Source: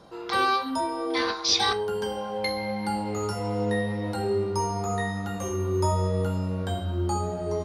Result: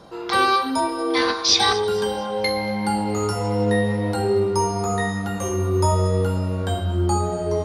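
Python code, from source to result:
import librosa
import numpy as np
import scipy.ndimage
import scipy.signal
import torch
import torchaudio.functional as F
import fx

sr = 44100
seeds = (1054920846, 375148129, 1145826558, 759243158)

p1 = fx.dynamic_eq(x, sr, hz=9000.0, q=2.6, threshold_db=-55.0, ratio=4.0, max_db=4)
p2 = p1 + fx.echo_alternate(p1, sr, ms=116, hz=2300.0, feedback_pct=68, wet_db=-13.5, dry=0)
y = F.gain(torch.from_numpy(p2), 5.5).numpy()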